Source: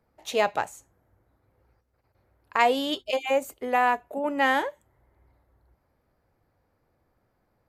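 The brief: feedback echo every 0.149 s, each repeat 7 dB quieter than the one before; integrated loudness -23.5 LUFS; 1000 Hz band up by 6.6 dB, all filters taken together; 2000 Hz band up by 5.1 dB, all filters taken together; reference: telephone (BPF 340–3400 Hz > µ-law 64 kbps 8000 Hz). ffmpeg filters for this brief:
-af "highpass=340,lowpass=3.4k,equalizer=f=1k:t=o:g=8,equalizer=f=2k:t=o:g=4,aecho=1:1:149|298|447|596|745:0.447|0.201|0.0905|0.0407|0.0183,volume=-3dB" -ar 8000 -c:a pcm_mulaw

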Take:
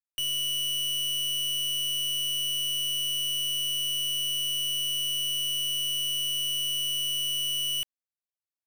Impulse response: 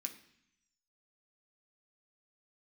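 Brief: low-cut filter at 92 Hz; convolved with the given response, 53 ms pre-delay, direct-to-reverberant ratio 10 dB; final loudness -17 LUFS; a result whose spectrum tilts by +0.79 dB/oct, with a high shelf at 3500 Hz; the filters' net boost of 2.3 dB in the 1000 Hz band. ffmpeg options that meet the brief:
-filter_complex "[0:a]highpass=92,equalizer=f=1k:t=o:g=3,highshelf=f=3.5k:g=-3,asplit=2[a][b];[1:a]atrim=start_sample=2205,adelay=53[c];[b][c]afir=irnorm=-1:irlink=0,volume=-7dB[d];[a][d]amix=inputs=2:normalize=0,volume=10.5dB"

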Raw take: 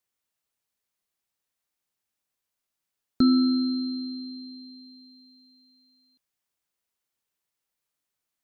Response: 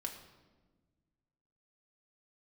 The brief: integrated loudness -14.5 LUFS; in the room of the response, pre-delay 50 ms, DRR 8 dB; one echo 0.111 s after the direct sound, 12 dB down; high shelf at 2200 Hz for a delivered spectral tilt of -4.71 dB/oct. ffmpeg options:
-filter_complex "[0:a]highshelf=f=2.2k:g=-8,aecho=1:1:111:0.251,asplit=2[a][b];[1:a]atrim=start_sample=2205,adelay=50[c];[b][c]afir=irnorm=-1:irlink=0,volume=-7dB[d];[a][d]amix=inputs=2:normalize=0,volume=11dB"

